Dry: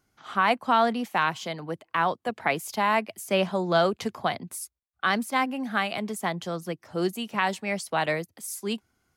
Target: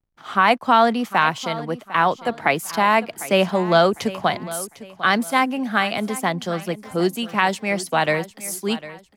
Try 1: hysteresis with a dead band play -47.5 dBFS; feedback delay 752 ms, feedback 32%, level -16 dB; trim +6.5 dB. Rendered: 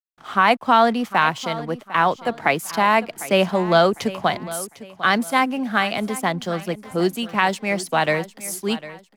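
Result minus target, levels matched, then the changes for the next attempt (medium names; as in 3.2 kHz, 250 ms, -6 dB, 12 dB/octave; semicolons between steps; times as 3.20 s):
hysteresis with a dead band: distortion +10 dB
change: hysteresis with a dead band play -58 dBFS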